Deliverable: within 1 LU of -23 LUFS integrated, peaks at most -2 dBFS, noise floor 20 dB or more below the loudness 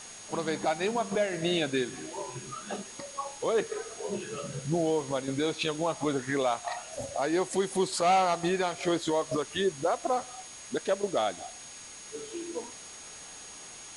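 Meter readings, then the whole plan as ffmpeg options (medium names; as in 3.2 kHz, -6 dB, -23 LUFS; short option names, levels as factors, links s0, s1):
steady tone 6.6 kHz; tone level -47 dBFS; noise floor -46 dBFS; noise floor target -51 dBFS; loudness -30.5 LUFS; peak level -17.0 dBFS; loudness target -23.0 LUFS
-> -af "bandreject=f=6600:w=30"
-af "afftdn=nr=6:nf=-46"
-af "volume=2.37"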